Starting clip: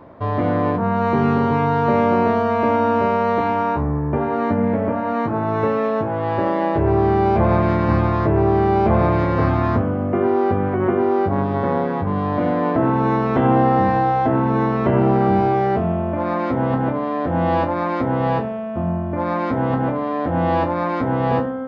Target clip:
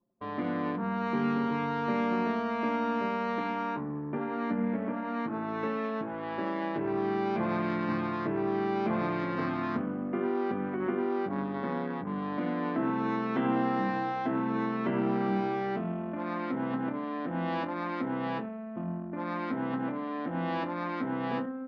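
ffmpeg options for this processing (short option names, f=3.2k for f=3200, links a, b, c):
-af "highpass=f=200:w=0.5412,highpass=f=200:w=1.3066,anlmdn=158,equalizer=f=610:w=0.63:g=-13,volume=-3.5dB"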